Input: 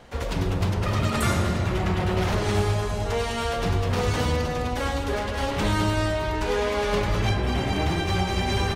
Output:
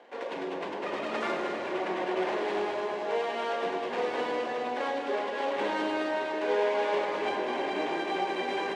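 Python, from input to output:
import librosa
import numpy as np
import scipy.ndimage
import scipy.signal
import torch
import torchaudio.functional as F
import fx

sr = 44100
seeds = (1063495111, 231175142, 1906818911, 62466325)

y = scipy.ndimage.median_filter(x, 9, mode='constant')
y = scipy.signal.sosfilt(scipy.signal.butter(4, 320.0, 'highpass', fs=sr, output='sos'), y)
y = fx.air_absorb(y, sr, metres=120.0)
y = fx.notch(y, sr, hz=1300.0, q=6.0)
y = fx.echo_alternate(y, sr, ms=102, hz=1300.0, feedback_pct=89, wet_db=-9)
y = y * librosa.db_to_amplitude(-2.0)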